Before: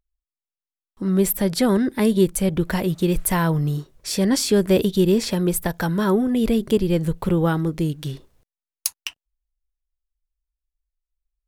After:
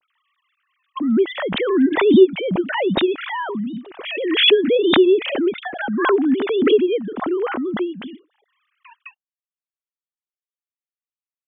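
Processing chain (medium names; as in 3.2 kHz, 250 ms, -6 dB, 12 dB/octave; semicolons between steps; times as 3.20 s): formants replaced by sine waves; swell ahead of each attack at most 47 dB/s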